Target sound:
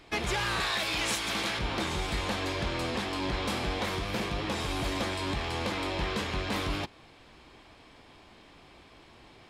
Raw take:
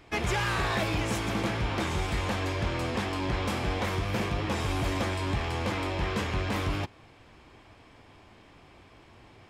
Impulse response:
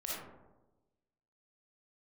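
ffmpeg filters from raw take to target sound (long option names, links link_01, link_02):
-filter_complex "[0:a]asettb=1/sr,asplit=3[link_01][link_02][link_03];[link_01]atrim=end=0.604[link_04];[link_02]atrim=start=0.6:end=1.59,asetpts=PTS-STARTPTS,afade=type=in:duration=0.004:curve=qsin,afade=type=out:start_time=0.986:duration=0.004:curve=qsin,tiltshelf=frequency=810:gain=-6[link_05];[link_03]atrim=start=1.586[link_06];[link_04][link_05]acrossfade=duration=0.004:curve1=hsin:curve2=qsin[link_07];[link_07][link_06]acrossfade=duration=0.004:curve1=qsin:curve2=hsin,alimiter=limit=-20.5dB:level=0:latency=1:release=336,equalizer=frequency=100:width_type=o:width=0.67:gain=-7,equalizer=frequency=4000:width_type=o:width=0.67:gain=6,equalizer=frequency=10000:width_type=o:width=0.67:gain=3"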